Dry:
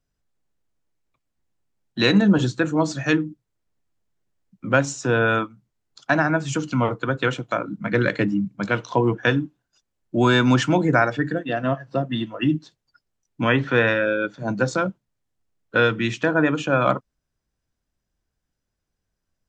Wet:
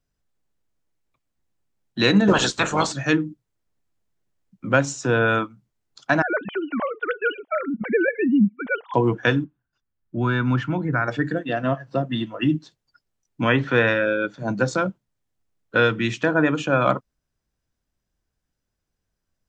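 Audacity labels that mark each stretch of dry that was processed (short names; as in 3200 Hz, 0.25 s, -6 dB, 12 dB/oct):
2.270000	2.910000	spectral limiter ceiling under each frame's peak by 27 dB
6.220000	8.940000	sine-wave speech
9.440000	11.080000	EQ curve 110 Hz 0 dB, 610 Hz -11 dB, 1400 Hz -3 dB, 2000 Hz -7 dB, 3500 Hz -13 dB, 7900 Hz -26 dB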